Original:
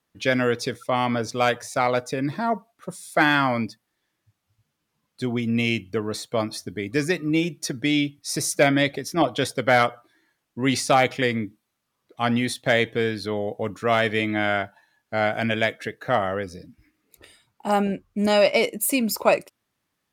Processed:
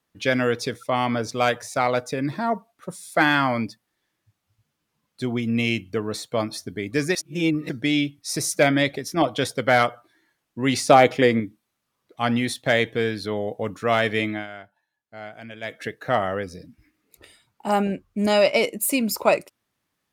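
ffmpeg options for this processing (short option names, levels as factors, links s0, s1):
-filter_complex "[0:a]asettb=1/sr,asplit=3[s0][s1][s2];[s0]atrim=end=10.884[s3];[s1]atrim=start=10.88:end=11.4,asetpts=PTS-STARTPTS,afade=t=in:d=0.004:c=qsin,afade=t=out:st=0.516:d=0.004:c=qsin,equalizer=f=410:w=0.53:g=7[s4];[s2]atrim=start=11.396[s5];[s3][s4]acrossfade=d=0.004:c1=hsin:c2=qsin[s6];[s6][s5]acrossfade=d=0.004:c1=qsin:c2=hsin,asplit=5[s7][s8][s9][s10][s11];[s7]atrim=end=7.152[s12];[s8]atrim=start=7.148:end=7.692,asetpts=PTS-STARTPTS,areverse[s13];[s9]atrim=start=7.688:end=14.47,asetpts=PTS-STARTPTS,afade=t=out:st=6.562:d=0.22:silence=0.16788[s14];[s10]atrim=start=14.47:end=15.61,asetpts=PTS-STARTPTS,volume=0.168[s15];[s11]atrim=start=15.61,asetpts=PTS-STARTPTS,afade=t=in:d=0.22:silence=0.16788[s16];[s12][s13]acrossfade=d=0.004:c1=hsin:c2=hsin[s17];[s14][s15][s16]concat=n=3:v=0:a=1[s18];[s17][s18]acrossfade=d=0.004:c1=hsin:c2=hsin"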